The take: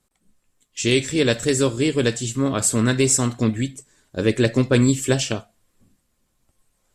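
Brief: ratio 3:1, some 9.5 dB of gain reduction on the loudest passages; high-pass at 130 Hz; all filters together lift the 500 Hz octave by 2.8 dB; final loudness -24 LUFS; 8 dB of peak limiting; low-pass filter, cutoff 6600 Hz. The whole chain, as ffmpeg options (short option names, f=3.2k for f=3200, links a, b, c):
-af "highpass=130,lowpass=6.6k,equalizer=f=500:t=o:g=3.5,acompressor=threshold=-25dB:ratio=3,volume=7dB,alimiter=limit=-12.5dB:level=0:latency=1"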